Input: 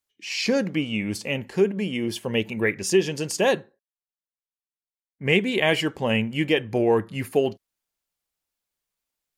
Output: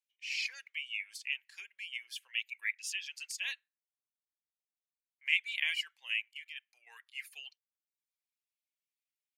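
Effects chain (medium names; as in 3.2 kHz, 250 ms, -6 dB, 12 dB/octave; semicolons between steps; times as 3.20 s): reverb removal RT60 0.72 s; 6.31–6.87 s: level held to a coarse grid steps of 16 dB; ladder high-pass 2 kHz, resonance 50%; trim -2.5 dB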